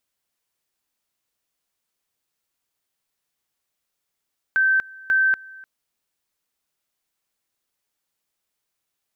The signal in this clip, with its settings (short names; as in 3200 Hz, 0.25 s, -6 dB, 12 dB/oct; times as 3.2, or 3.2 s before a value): two-level tone 1550 Hz -15 dBFS, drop 23.5 dB, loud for 0.24 s, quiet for 0.30 s, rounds 2